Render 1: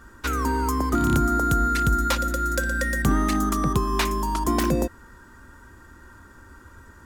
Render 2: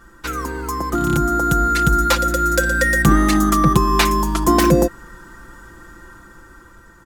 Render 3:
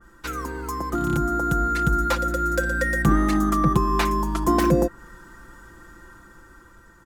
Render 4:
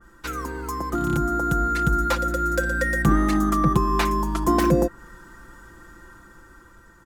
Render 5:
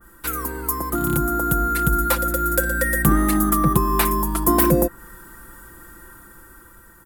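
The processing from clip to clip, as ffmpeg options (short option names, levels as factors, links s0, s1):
-af "aecho=1:1:5.9:0.66,dynaudnorm=f=660:g=5:m=3.76"
-af "adynamicequalizer=threshold=0.0224:dfrequency=2100:dqfactor=0.7:tfrequency=2100:tqfactor=0.7:attack=5:release=100:ratio=0.375:range=3.5:mode=cutabove:tftype=highshelf,volume=0.562"
-af anull
-af "aexciter=amount=6.8:drive=6.2:freq=8800,volume=1.19"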